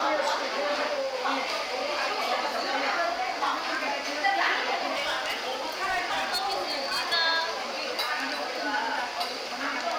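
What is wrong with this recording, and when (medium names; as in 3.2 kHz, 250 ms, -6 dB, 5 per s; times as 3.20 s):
4.93–7.14 s: clipped -24 dBFS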